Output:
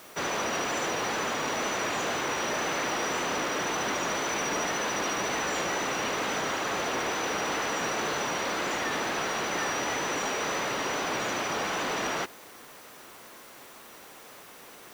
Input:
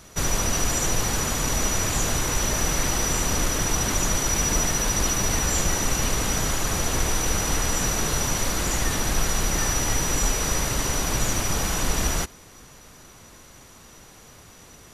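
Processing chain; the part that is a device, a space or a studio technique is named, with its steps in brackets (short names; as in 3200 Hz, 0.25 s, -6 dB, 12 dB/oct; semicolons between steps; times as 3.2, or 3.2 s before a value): tape answering machine (BPF 340–3100 Hz; soft clip -25 dBFS, distortion -18 dB; wow and flutter 25 cents; white noise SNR 22 dB); gain +2.5 dB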